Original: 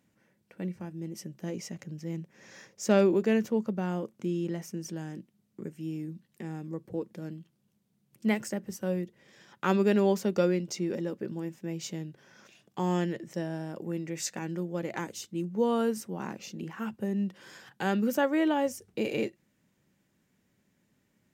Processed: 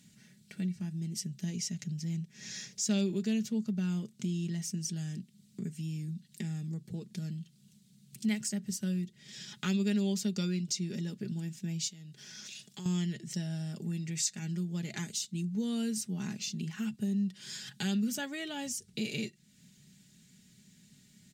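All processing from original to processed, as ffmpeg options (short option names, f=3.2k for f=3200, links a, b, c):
-filter_complex "[0:a]asettb=1/sr,asplit=3[a][b][c];[a]atrim=end=11.884[d];[b]atrim=start=11.88:end=12.86,asetpts=PTS-STARTPTS,afade=t=in:d=0.004:c=qsin,afade=t=out:st=0.976:d=0.004:c=qsin,bass=f=250:g=-6,treble=f=4k:g=2,acompressor=threshold=-55dB:ratio=2:attack=3.2:release=140:knee=1:detection=peak[e];[c]atrim=start=12.856[f];[d][e]acrossfade=d=0.004:c1=hsin:c2=qsin[g];[g][f]acrossfade=d=0.004:c1=qsin:c2=hsin,equalizer=f=125:t=o:w=1:g=11,equalizer=f=500:t=o:w=1:g=-10,equalizer=f=1k:t=o:w=1:g=-11,equalizer=f=4k:t=o:w=1:g=10,equalizer=f=8k:t=o:w=1:g=10,acompressor=threshold=-49dB:ratio=2,aecho=1:1:4.8:0.58,volume=5.5dB"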